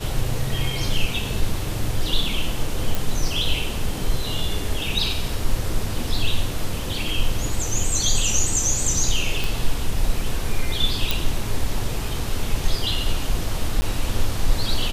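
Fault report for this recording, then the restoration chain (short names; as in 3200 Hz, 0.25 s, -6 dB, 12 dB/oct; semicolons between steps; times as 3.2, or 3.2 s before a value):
2.95 pop
9.44 pop
11.11 pop
13.81–13.82 gap 10 ms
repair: de-click; interpolate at 13.81, 10 ms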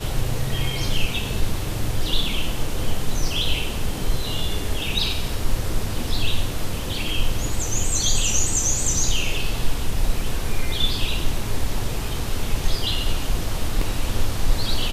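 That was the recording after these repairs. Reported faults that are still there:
none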